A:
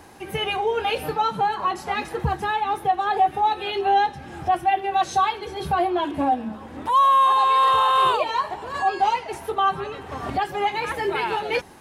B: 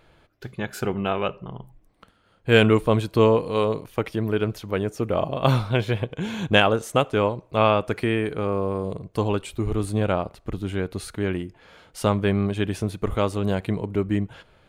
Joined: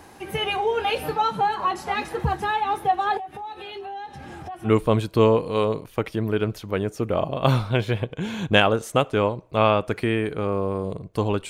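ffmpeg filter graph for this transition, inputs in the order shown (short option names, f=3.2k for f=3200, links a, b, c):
-filter_complex "[0:a]asettb=1/sr,asplit=3[a][b][c];[a]atrim=end=3.174[d];[b]atrim=start=3.17:end=4.71,asetpts=PTS-STARTPTS,afade=t=in:d=0.004:c=qsin,afade=t=out:st=1.536:d=0.004:c=qsin,acompressor=threshold=-34dB:ratio=5:attack=3.2:release=140:knee=1:detection=peak[e];[c]atrim=start=4.706[f];[d][e]acrossfade=d=0.004:c1=hsin:c2=qsin[g];[g][f]acrossfade=d=0.004:c1=qsin:c2=hsin,apad=whole_dur=11.49,atrim=end=11.49,atrim=end=4.71,asetpts=PTS-STARTPTS[h];[1:a]atrim=start=2.63:end=9.49,asetpts=PTS-STARTPTS[i];[h][i]acrossfade=d=0.08:c1=tri:c2=tri"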